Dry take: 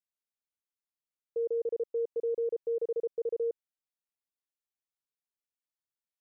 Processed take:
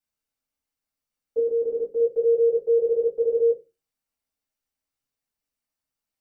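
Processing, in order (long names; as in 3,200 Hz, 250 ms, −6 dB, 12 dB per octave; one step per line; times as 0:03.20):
0:01.38–0:02.00: octave-band graphic EQ 125/250/500 Hz −7/+11/−7 dB
convolution reverb RT60 0.25 s, pre-delay 4 ms, DRR −5 dB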